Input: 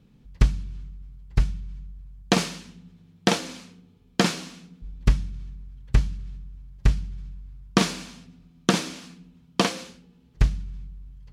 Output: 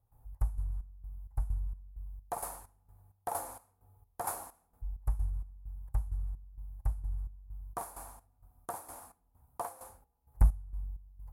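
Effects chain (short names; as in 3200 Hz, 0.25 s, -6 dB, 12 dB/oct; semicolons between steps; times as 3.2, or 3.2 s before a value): EQ curve 110 Hz 0 dB, 170 Hz -28 dB, 480 Hz -10 dB, 810 Hz +7 dB, 3000 Hz -29 dB, 5900 Hz -20 dB, 11000 Hz +11 dB; step gate ".xx..xx." 130 bpm -12 dB; soft clip -14.5 dBFS, distortion -13 dB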